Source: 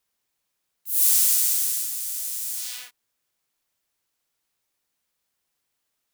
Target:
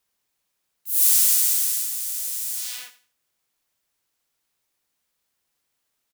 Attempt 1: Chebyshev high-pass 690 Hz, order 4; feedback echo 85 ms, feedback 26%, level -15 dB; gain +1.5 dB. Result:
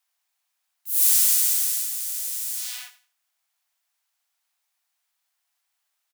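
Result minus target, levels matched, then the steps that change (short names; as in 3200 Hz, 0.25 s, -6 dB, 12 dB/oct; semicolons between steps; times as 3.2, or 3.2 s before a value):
500 Hz band -9.0 dB
remove: Chebyshev high-pass 690 Hz, order 4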